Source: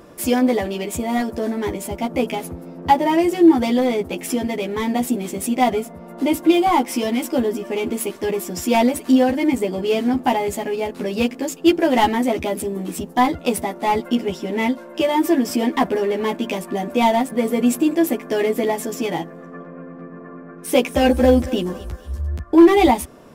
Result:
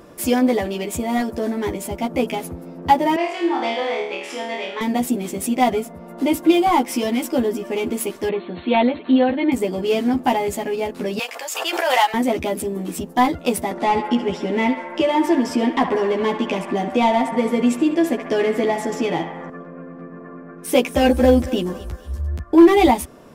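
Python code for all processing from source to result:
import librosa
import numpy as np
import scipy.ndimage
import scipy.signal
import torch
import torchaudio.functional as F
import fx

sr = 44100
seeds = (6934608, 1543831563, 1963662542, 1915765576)

y = fx.chain(x, sr, fx.bandpass_edges(low_hz=660.0, high_hz=4000.0),
    fx.room_flutter(wall_m=4.5, rt60_s=0.65), at=(3.16, 4.81))
y = fx.chain(y, sr, fx.brickwall_lowpass(high_hz=4400.0),
    fx.low_shelf(hz=87.0, db=-11.0), at=(8.29, 9.52))
y = fx.chain(y, sr, fx.highpass(hz=700.0, slope=24),
    fx.pre_swell(db_per_s=33.0), at=(11.19, 12.14))
y = fx.chain(y, sr, fx.bessel_lowpass(hz=6100.0, order=2),
    fx.echo_banded(ms=67, feedback_pct=77, hz=1300.0, wet_db=-7.0),
    fx.band_squash(depth_pct=40), at=(13.71, 19.5))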